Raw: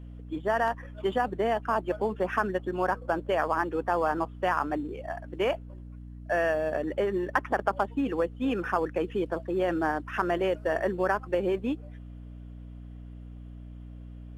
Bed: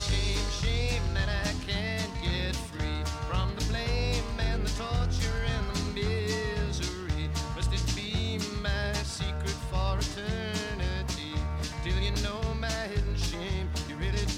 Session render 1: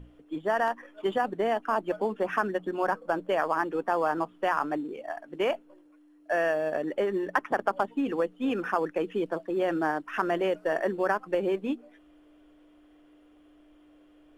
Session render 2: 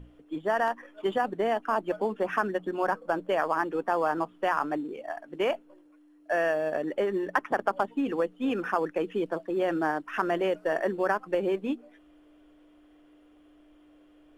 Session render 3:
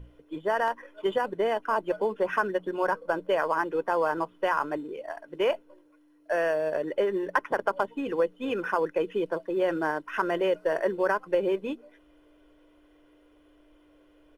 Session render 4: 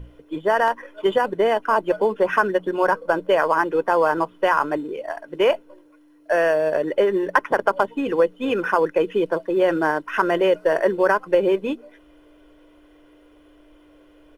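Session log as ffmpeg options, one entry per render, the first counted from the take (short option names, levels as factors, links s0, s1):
-af "bandreject=f=60:t=h:w=6,bandreject=f=120:t=h:w=6,bandreject=f=180:t=h:w=6,bandreject=f=240:t=h:w=6"
-af anull
-af "bandreject=f=7300:w=10,aecho=1:1:2:0.45"
-af "volume=2.37"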